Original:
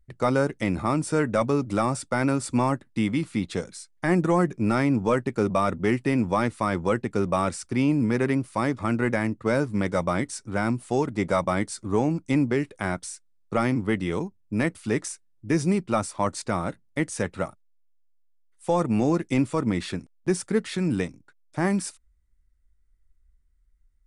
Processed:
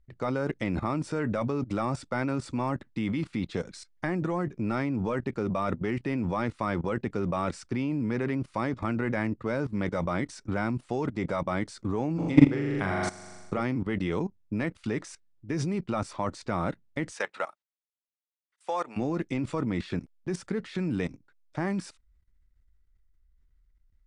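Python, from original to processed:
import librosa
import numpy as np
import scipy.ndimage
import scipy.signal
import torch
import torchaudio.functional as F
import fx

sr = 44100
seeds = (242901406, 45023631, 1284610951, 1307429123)

y = fx.room_flutter(x, sr, wall_m=7.1, rt60_s=0.92, at=(12.18, 13.59), fade=0.02)
y = fx.highpass(y, sr, hz=740.0, slope=12, at=(17.11, 18.96), fade=0.02)
y = scipy.signal.sosfilt(scipy.signal.butter(2, 4900.0, 'lowpass', fs=sr, output='sos'), y)
y = fx.level_steps(y, sr, step_db=17)
y = y * librosa.db_to_amplitude(5.5)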